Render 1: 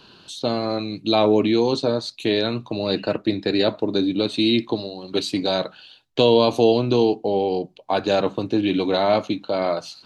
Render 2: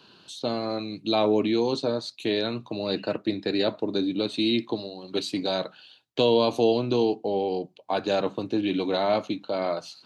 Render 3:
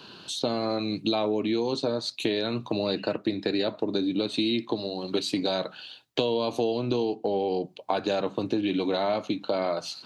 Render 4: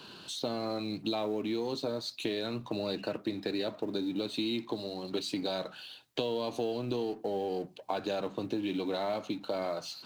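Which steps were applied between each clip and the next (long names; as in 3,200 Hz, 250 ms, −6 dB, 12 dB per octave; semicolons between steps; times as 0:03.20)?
high-pass filter 110 Hz; level −5 dB
downward compressor, threshold −31 dBFS, peak gain reduction 14 dB; level +7.5 dB
mu-law and A-law mismatch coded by mu; level −7.5 dB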